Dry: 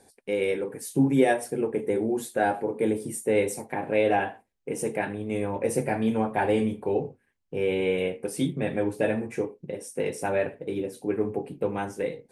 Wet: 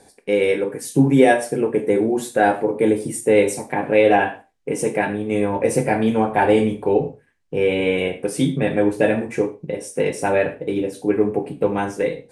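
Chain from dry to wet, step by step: low-pass 10 kHz 12 dB/octave; reverberation, pre-delay 3 ms, DRR 7.5 dB; trim +7.5 dB

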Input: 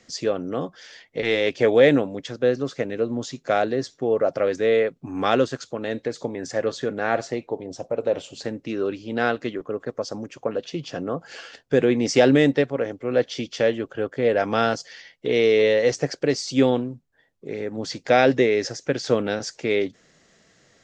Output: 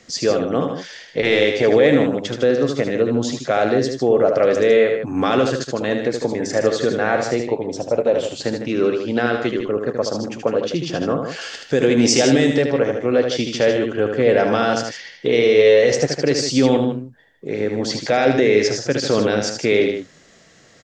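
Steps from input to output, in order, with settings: 11.41–12.57 s: treble shelf 4.4 kHz +11 dB; peak limiter -13.5 dBFS, peak gain reduction 9 dB; on a send: loudspeakers at several distances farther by 26 m -6 dB, 53 m -9 dB; on the sum: trim +6.5 dB

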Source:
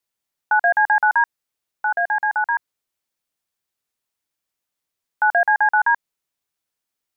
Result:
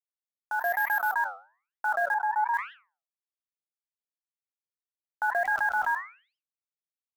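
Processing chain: 5.45–5.93 s: jump at every zero crossing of -35.5 dBFS; low-pass 1.8 kHz 24 dB/octave; comb 3 ms, depth 35%; peak limiter -18.5 dBFS, peak gain reduction 11 dB; level rider gain up to 13 dB; bit crusher 6-bit; flange 1.1 Hz, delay 3.2 ms, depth 8 ms, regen -89%; 0.60–1.14 s: careless resampling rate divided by 3×, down none, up hold; 2.14–2.54 s: ladder high-pass 830 Hz, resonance 80%; decay stretcher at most 150 dB/s; trim -9 dB

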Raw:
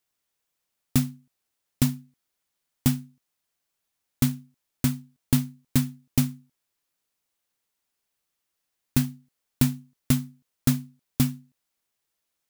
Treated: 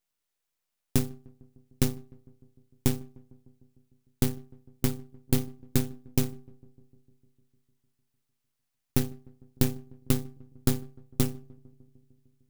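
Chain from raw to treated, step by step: half-wave rectifier; filtered feedback delay 151 ms, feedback 74%, low-pass 1.1 kHz, level -24 dB

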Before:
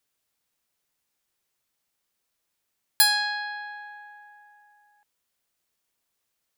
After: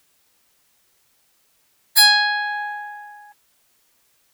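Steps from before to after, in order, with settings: dynamic bell 740 Hz, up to -4 dB, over -42 dBFS, Q 0.75; in parallel at 0 dB: compression 6:1, threshold -39 dBFS, peak gain reduction 22.5 dB; on the sum: short-mantissa float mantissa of 8-bit; plain phase-vocoder stretch 0.66×; loudness maximiser +14.5 dB; trim -1 dB

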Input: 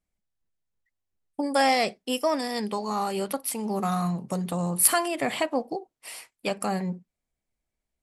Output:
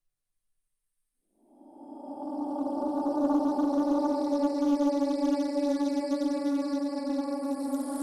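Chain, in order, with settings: Paulstretch 38×, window 0.10 s, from 1.31 s; loudspeaker Doppler distortion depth 0.3 ms

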